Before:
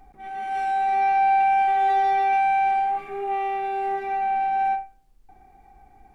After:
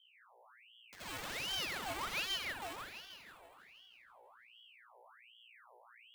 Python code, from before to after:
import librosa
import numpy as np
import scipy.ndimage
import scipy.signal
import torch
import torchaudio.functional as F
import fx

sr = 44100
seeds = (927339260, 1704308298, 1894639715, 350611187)

y = fx.spec_gate(x, sr, threshold_db=-15, keep='weak')
y = scipy.signal.sosfilt(scipy.signal.butter(2, 570.0, 'highpass', fs=sr, output='sos'), y)
y = fx.peak_eq(y, sr, hz=2400.0, db=-7.5, octaves=2.8)
y = fx.quant_dither(y, sr, seeds[0], bits=6, dither='none')
y = fx.add_hum(y, sr, base_hz=60, snr_db=18)
y = fx.wow_flutter(y, sr, seeds[1], rate_hz=2.1, depth_cents=23.0)
y = fx.echo_wet_lowpass(y, sr, ms=161, feedback_pct=65, hz=2600.0, wet_db=-3.5)
y = fx.room_shoebox(y, sr, seeds[2], volume_m3=3500.0, walls='furnished', distance_m=6.7)
y = np.repeat(scipy.signal.resample_poly(y, 1, 4), 4)[:len(y)]
y = fx.ring_lfo(y, sr, carrier_hz=1900.0, swing_pct=65, hz=1.3)
y = y * librosa.db_to_amplitude(-4.0)